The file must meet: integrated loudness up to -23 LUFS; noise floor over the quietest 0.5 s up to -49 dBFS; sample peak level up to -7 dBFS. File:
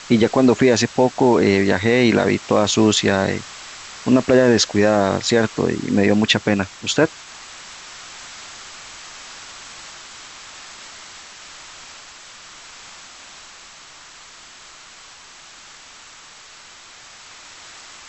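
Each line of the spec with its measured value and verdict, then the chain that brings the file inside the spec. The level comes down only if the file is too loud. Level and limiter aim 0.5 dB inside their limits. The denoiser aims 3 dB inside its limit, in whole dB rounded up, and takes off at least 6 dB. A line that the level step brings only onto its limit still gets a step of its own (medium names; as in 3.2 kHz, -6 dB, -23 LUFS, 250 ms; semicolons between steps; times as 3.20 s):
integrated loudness -17.0 LUFS: fail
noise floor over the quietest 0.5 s -43 dBFS: fail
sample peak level -3.5 dBFS: fail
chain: trim -6.5 dB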